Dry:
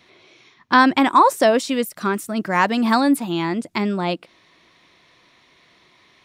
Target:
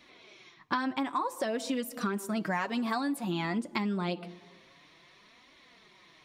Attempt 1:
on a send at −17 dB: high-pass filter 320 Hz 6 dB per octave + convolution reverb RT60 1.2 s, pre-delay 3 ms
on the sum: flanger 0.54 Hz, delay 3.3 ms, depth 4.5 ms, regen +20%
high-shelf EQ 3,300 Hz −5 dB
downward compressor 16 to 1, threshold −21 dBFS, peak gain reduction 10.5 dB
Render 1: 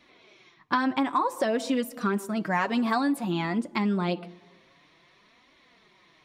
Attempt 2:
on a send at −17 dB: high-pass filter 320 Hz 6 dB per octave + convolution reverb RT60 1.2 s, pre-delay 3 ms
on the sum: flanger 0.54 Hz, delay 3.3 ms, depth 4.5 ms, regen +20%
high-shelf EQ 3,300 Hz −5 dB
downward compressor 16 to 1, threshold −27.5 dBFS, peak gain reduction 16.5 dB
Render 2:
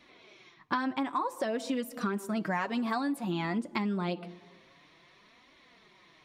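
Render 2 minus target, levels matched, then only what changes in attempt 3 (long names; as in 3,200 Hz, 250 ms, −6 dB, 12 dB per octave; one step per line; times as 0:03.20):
8,000 Hz band −4.0 dB
remove: high-shelf EQ 3,300 Hz −5 dB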